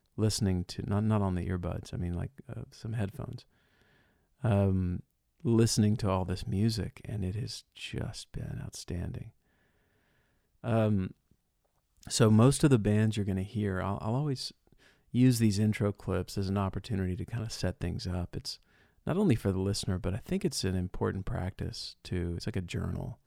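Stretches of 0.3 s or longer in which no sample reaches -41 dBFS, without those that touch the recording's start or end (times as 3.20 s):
3.40–4.44 s
5.00–5.45 s
9.27–10.64 s
11.11–12.03 s
14.49–15.14 s
18.55–19.07 s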